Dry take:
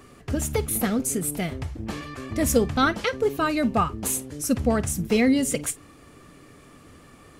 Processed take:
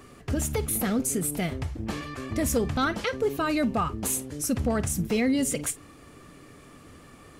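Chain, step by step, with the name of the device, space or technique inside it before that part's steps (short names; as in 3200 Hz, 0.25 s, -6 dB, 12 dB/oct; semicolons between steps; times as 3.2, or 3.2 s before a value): clipper into limiter (hard clip -12.5 dBFS, distortion -27 dB; limiter -17.5 dBFS, peak gain reduction 5 dB)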